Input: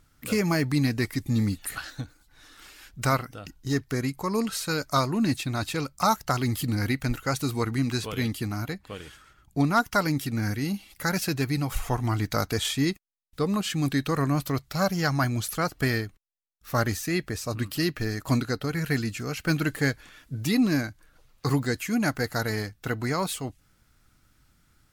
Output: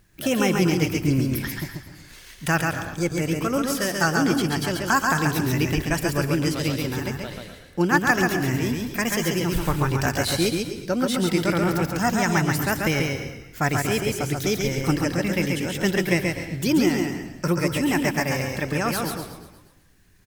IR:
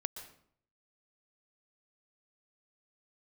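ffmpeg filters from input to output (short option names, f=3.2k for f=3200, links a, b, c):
-filter_complex "[0:a]asetrate=54243,aresample=44100,asplit=7[a][b][c][d][e][f][g];[b]adelay=119,afreqshift=-33,volume=-12.5dB[h];[c]adelay=238,afreqshift=-66,volume=-17.7dB[i];[d]adelay=357,afreqshift=-99,volume=-22.9dB[j];[e]adelay=476,afreqshift=-132,volume=-28.1dB[k];[f]adelay=595,afreqshift=-165,volume=-33.3dB[l];[g]adelay=714,afreqshift=-198,volume=-38.5dB[m];[a][h][i][j][k][l][m]amix=inputs=7:normalize=0,asplit=2[n][o];[1:a]atrim=start_sample=2205,asetrate=48510,aresample=44100,adelay=136[p];[o][p]afir=irnorm=-1:irlink=0,volume=-1.5dB[q];[n][q]amix=inputs=2:normalize=0,volume=2dB"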